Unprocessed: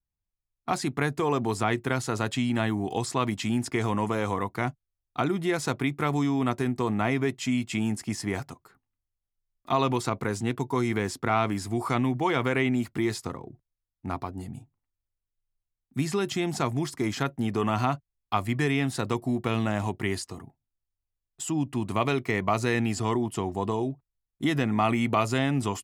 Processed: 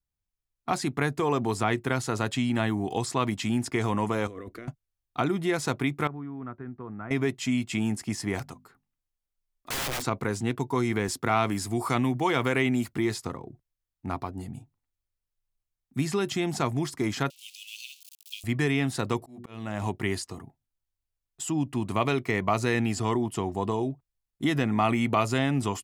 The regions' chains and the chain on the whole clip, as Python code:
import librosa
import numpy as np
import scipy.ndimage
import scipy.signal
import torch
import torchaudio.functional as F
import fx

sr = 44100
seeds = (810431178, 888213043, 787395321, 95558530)

y = fx.chain(x, sr, fx.high_shelf(hz=2800.0, db=-11.0),
    fx.over_compress(threshold_db=-36.0, ratio=-1.0),
    fx.fixed_phaser(hz=360.0, stages=4), at=(4.27, 4.68))
y = fx.chain(y, sr, fx.ladder_lowpass(hz=1600.0, resonance_pct=60),
    fx.peak_eq(hz=1100.0, db=-9.0, octaves=2.2), at=(6.07, 7.11))
y = fx.chain(y, sr, fx.hum_notches(base_hz=50, count=5),
    fx.overflow_wrap(gain_db=26.0), at=(8.39, 10.04))
y = fx.chain(y, sr, fx.highpass(hz=60.0, slope=12),
    fx.high_shelf(hz=5300.0, db=7.0), at=(11.08, 12.93))
y = fx.chain(y, sr, fx.zero_step(step_db=-35.0),
    fx.steep_highpass(hz=2600.0, slope=72), at=(17.3, 18.44))
y = fx.chain(y, sr, fx.hum_notches(base_hz=60, count=9),
    fx.auto_swell(attack_ms=494.0), at=(19.17, 19.82))